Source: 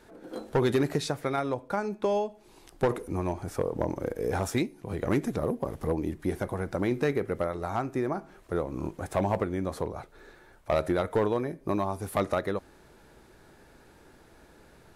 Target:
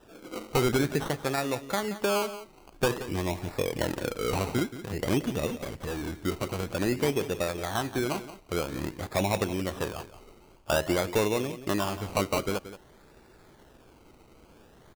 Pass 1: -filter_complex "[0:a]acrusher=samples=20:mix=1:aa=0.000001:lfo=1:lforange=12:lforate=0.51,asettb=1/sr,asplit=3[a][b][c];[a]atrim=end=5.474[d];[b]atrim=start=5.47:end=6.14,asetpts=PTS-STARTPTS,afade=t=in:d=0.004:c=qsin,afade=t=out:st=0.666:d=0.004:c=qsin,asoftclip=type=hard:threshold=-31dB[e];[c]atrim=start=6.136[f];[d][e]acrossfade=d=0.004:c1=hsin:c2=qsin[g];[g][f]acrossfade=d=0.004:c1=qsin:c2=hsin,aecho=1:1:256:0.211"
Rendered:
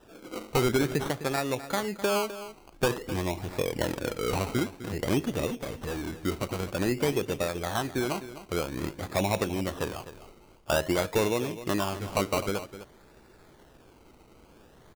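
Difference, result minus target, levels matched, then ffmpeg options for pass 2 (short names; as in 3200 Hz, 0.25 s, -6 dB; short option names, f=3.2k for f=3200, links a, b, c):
echo 79 ms late
-filter_complex "[0:a]acrusher=samples=20:mix=1:aa=0.000001:lfo=1:lforange=12:lforate=0.51,asettb=1/sr,asplit=3[a][b][c];[a]atrim=end=5.474[d];[b]atrim=start=5.47:end=6.14,asetpts=PTS-STARTPTS,afade=t=in:d=0.004:c=qsin,afade=t=out:st=0.666:d=0.004:c=qsin,asoftclip=type=hard:threshold=-31dB[e];[c]atrim=start=6.136[f];[d][e]acrossfade=d=0.004:c1=hsin:c2=qsin[g];[g][f]acrossfade=d=0.004:c1=qsin:c2=hsin,aecho=1:1:177:0.211"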